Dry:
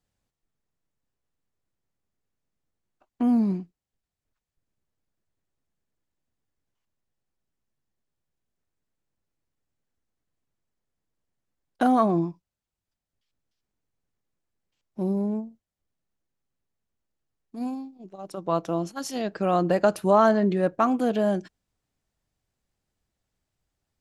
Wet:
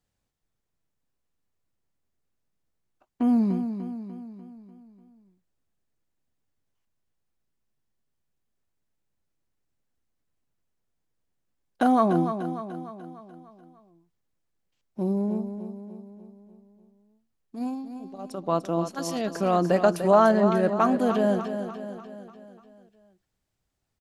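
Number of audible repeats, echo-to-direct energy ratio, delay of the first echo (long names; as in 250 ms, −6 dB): 5, −7.5 dB, 296 ms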